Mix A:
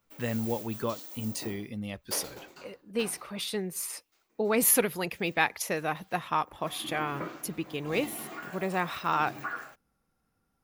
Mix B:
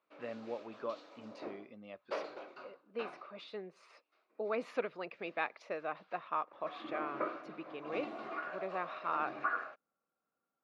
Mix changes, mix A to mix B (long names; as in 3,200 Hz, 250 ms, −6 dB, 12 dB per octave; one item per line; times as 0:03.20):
speech −9.0 dB
master: add loudspeaker in its box 330–3,500 Hz, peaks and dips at 610 Hz +6 dB, 860 Hz −4 dB, 1,200 Hz +5 dB, 1,900 Hz −5 dB, 3,200 Hz −8 dB